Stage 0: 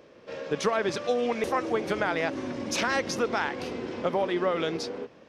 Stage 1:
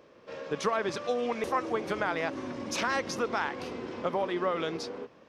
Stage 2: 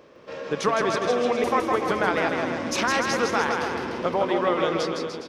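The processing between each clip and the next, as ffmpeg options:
-af "equalizer=f=1100:w=2.4:g=4.5,volume=0.631"
-af "aecho=1:1:160|296|411.6|509.9|593.4:0.631|0.398|0.251|0.158|0.1,volume=1.88"

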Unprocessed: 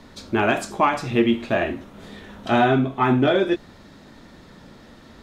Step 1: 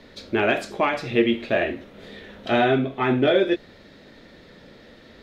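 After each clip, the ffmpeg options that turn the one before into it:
-af "equalizer=f=500:t=o:w=1:g=9,equalizer=f=1000:t=o:w=1:g=-5,equalizer=f=2000:t=o:w=1:g=7,equalizer=f=4000:t=o:w=1:g=6,equalizer=f=8000:t=o:w=1:g=-5,volume=0.562"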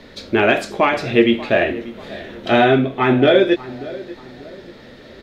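-filter_complex "[0:a]asplit=2[s0][s1];[s1]adelay=588,lowpass=f=1700:p=1,volume=0.141,asplit=2[s2][s3];[s3]adelay=588,lowpass=f=1700:p=1,volume=0.41,asplit=2[s4][s5];[s5]adelay=588,lowpass=f=1700:p=1,volume=0.41[s6];[s0][s2][s4][s6]amix=inputs=4:normalize=0,volume=2"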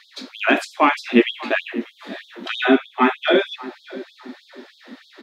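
-af "equalizer=f=125:t=o:w=1:g=10,equalizer=f=250:t=o:w=1:g=10,equalizer=f=500:t=o:w=1:g=-9,equalizer=f=1000:t=o:w=1:g=5,afftfilt=real='re*gte(b*sr/1024,200*pow(3300/200,0.5+0.5*sin(2*PI*3.2*pts/sr)))':imag='im*gte(b*sr/1024,200*pow(3300/200,0.5+0.5*sin(2*PI*3.2*pts/sr)))':win_size=1024:overlap=0.75,volume=0.891"

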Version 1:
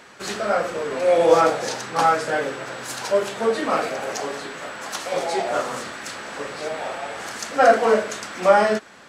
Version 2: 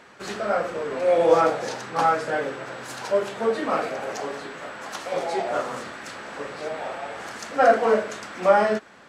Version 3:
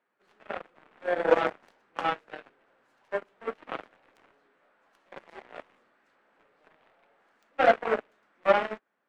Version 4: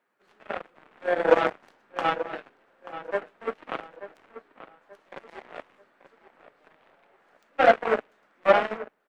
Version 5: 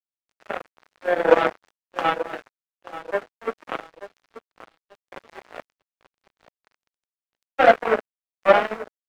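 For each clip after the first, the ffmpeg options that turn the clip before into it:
-af "highshelf=f=3600:g=-7.5,volume=0.794"
-filter_complex "[0:a]aeval=exprs='0.596*(cos(1*acos(clip(val(0)/0.596,-1,1)))-cos(1*PI/2))+0.0841*(cos(3*acos(clip(val(0)/0.596,-1,1)))-cos(3*PI/2))+0.00668*(cos(6*acos(clip(val(0)/0.596,-1,1)))-cos(6*PI/2))+0.0531*(cos(7*acos(clip(val(0)/0.596,-1,1)))-cos(7*PI/2))':c=same,acrossover=split=190 3000:gain=0.251 1 0.224[s0][s1][s2];[s0][s1][s2]amix=inputs=3:normalize=0,volume=0.841"
-filter_complex "[0:a]asplit=2[s0][s1];[s1]adelay=884,lowpass=f=2900:p=1,volume=0.224,asplit=2[s2][s3];[s3]adelay=884,lowpass=f=2900:p=1,volume=0.35,asplit=2[s4][s5];[s5]adelay=884,lowpass=f=2900:p=1,volume=0.35[s6];[s0][s2][s4][s6]amix=inputs=4:normalize=0,volume=1.41"
-af "aeval=exprs='sgn(val(0))*max(abs(val(0))-0.00335,0)':c=same,volume=1.5"

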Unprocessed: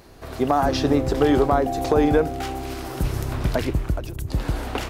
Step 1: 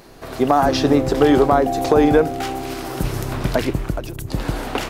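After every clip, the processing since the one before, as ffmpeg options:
-af "equalizer=f=66:w=1.9:g=-13,volume=1.68"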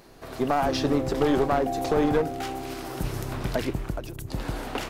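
-af "aeval=exprs='clip(val(0),-1,0.178)':c=same,volume=0.447"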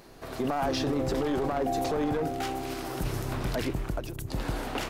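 -af "alimiter=limit=0.0944:level=0:latency=1:release=14"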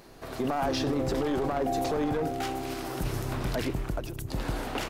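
-af "aecho=1:1:100:0.0891"

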